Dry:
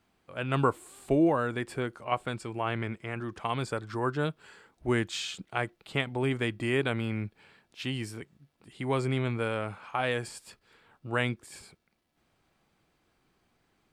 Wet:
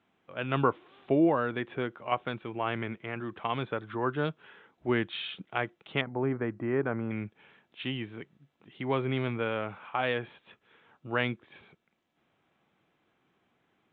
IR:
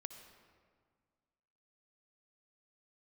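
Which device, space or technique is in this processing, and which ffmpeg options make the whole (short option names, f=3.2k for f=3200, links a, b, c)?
Bluetooth headset: -filter_complex "[0:a]asettb=1/sr,asplit=3[a][b][c];[a]atrim=end=6.014[d];[b]atrim=start=6.01:end=7.11,asetpts=PTS-STARTPTS,afade=t=in:d=0.004:c=qsin,afade=t=out:st=1.096:d=0.004:c=qsin,lowpass=f=1.6k:w=0.5412,lowpass=f=1.6k:w=1.3066[e];[c]atrim=start=7.106[f];[d][e]acrossfade=d=0.004:c1=hsin:c2=qsin[g];[g][f]acrossfade=d=0.004:c1=qsin:c2=hsin,highpass=130,aresample=8000,aresample=44100" -ar 16000 -c:a sbc -b:a 64k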